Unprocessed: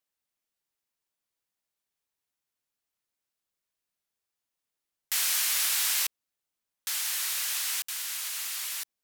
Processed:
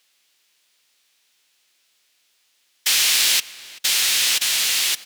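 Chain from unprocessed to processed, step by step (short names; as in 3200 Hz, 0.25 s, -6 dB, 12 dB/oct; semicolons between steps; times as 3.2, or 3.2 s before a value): weighting filter D; power-law curve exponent 0.5; low shelf 190 Hz -9 dB; in parallel at +2.5 dB: compressor, threshold -25 dBFS, peak gain reduction 11 dB; on the sum: time stretch by phase-locked vocoder 0.56×; gate with hold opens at -26 dBFS; outdoor echo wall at 66 m, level -18 dB; gain -3.5 dB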